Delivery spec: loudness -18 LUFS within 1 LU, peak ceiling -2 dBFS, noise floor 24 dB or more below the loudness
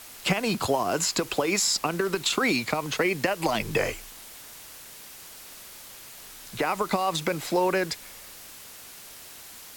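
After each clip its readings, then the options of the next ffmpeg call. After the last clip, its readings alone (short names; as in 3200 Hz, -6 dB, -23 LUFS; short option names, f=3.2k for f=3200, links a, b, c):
noise floor -45 dBFS; noise floor target -50 dBFS; loudness -26.0 LUFS; peak -10.5 dBFS; loudness target -18.0 LUFS
-> -af "afftdn=nr=6:nf=-45"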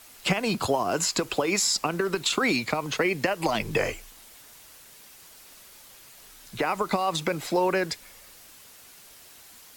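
noise floor -51 dBFS; loudness -26.0 LUFS; peak -10.5 dBFS; loudness target -18.0 LUFS
-> -af "volume=8dB"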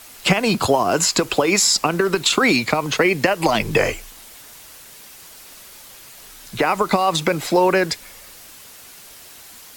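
loudness -18.0 LUFS; peak -2.5 dBFS; noise floor -43 dBFS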